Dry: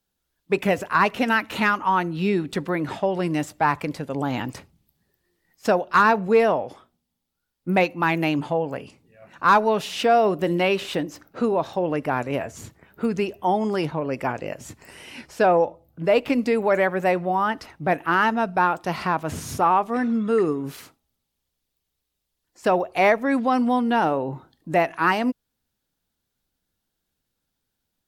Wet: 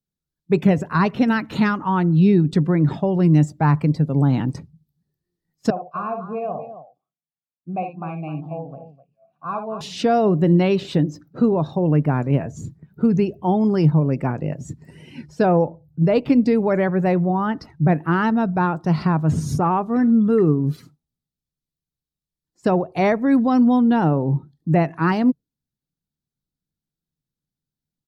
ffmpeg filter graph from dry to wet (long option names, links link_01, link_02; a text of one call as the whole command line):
ffmpeg -i in.wav -filter_complex "[0:a]asettb=1/sr,asplit=3[link_01][link_02][link_03];[link_01]atrim=end=5.704[link_04];[link_02]atrim=start=5.7:end=9.81,asetpts=PTS-STARTPTS,afade=type=in:duration=0.004:curve=qsin,afade=type=out:start_time=4.106:duration=0.004:curve=qsin,asplit=3[link_05][link_06][link_07];[link_05]bandpass=frequency=730:width_type=q:width=8,volume=0dB[link_08];[link_06]bandpass=frequency=1090:width_type=q:width=8,volume=-6dB[link_09];[link_07]bandpass=frequency=2440:width_type=q:width=8,volume=-9dB[link_10];[link_08][link_09][link_10]amix=inputs=3:normalize=0,bass=frequency=250:gain=13,treble=frequency=4000:gain=3,aecho=1:1:59|78|256:0.447|0.133|0.282,atrim=end_sample=181251[link_11];[link_03]atrim=start=9.806[link_12];[link_04][link_11]acrossfade=duration=0.004:curve1=hsin:curve2=qsin[link_13];[link_13][link_12]acrossfade=duration=0.004:curve1=qsin:curve2=hsin,equalizer=frequency=150:width_type=o:width=0.51:gain=12,afftdn=noise_reduction=14:noise_floor=-43,firequalizer=gain_entry='entry(290,0);entry(560,-7);entry(2700,-12);entry(4000,-4);entry(11000,-7)':delay=0.05:min_phase=1,volume=5.5dB" out.wav